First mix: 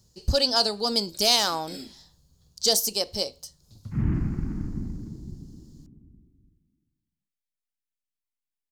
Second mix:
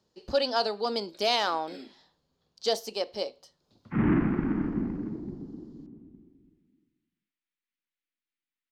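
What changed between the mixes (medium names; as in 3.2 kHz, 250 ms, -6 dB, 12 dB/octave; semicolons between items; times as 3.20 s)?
background +12.0 dB; master: add three-band isolator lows -22 dB, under 240 Hz, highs -23 dB, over 3.5 kHz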